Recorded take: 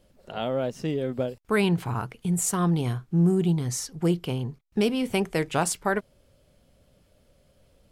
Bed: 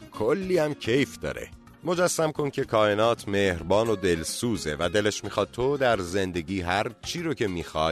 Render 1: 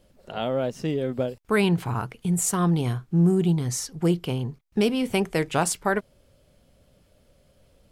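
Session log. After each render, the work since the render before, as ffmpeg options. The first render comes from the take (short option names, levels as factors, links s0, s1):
-af "volume=1.19"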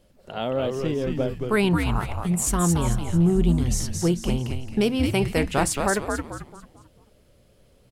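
-filter_complex "[0:a]asplit=6[s0][s1][s2][s3][s4][s5];[s1]adelay=221,afreqshift=-130,volume=0.631[s6];[s2]adelay=442,afreqshift=-260,volume=0.245[s7];[s3]adelay=663,afreqshift=-390,volume=0.0955[s8];[s4]adelay=884,afreqshift=-520,volume=0.0376[s9];[s5]adelay=1105,afreqshift=-650,volume=0.0146[s10];[s0][s6][s7][s8][s9][s10]amix=inputs=6:normalize=0"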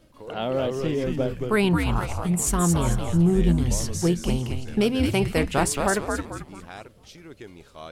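-filter_complex "[1:a]volume=0.168[s0];[0:a][s0]amix=inputs=2:normalize=0"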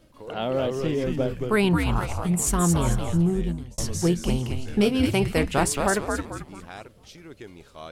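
-filter_complex "[0:a]asettb=1/sr,asplit=3[s0][s1][s2];[s0]atrim=end=4.574[s3];[s1]atrim=start=4.57:end=5.07,asetpts=PTS-STARTPTS,afade=t=in:d=0.004:c=qsin,afade=t=out:st=0.496:d=0.004:c=qsin,asplit=2[s4][s5];[s5]adelay=20,volume=0.422[s6];[s4][s6]amix=inputs=2:normalize=0,atrim=end_sample=22050[s7];[s2]atrim=start=5.066[s8];[s3][s7]acrossfade=d=0.004:c1=hsin:c2=qsin[s9];[s9][s8]acrossfade=d=0.004:c1=qsin:c2=hsin,asplit=2[s10][s11];[s10]atrim=end=3.78,asetpts=PTS-STARTPTS,afade=t=out:st=3.06:d=0.72[s12];[s11]atrim=start=3.78,asetpts=PTS-STARTPTS,afade=t=in:d=0.004:c=hsin[s13];[s12][s13]concat=n=2:v=0:a=1"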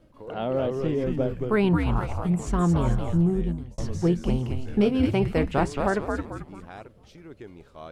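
-filter_complex "[0:a]acrossover=split=6900[s0][s1];[s1]acompressor=threshold=0.00398:ratio=4:attack=1:release=60[s2];[s0][s2]amix=inputs=2:normalize=0,highshelf=f=2400:g=-12"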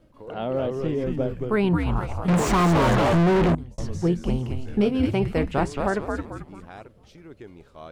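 -filter_complex "[0:a]asettb=1/sr,asplit=3[s0][s1][s2];[s0]atrim=end=2.284[s3];[s1]atrim=start=2.28:end=3.55,asetpts=PTS-STARTPTS,afade=t=in:d=0.004:c=qsin,afade=t=out:st=1.266:d=0.004:c=qsin,asplit=2[s4][s5];[s5]highpass=f=720:p=1,volume=126,asoftclip=type=tanh:threshold=0.251[s6];[s4][s6]amix=inputs=2:normalize=0,lowpass=f=1600:p=1,volume=0.501[s7];[s2]atrim=start=3.546[s8];[s3][s7]acrossfade=d=0.004:c1=hsin:c2=qsin[s9];[s9][s8]acrossfade=d=0.004:c1=qsin:c2=hsin"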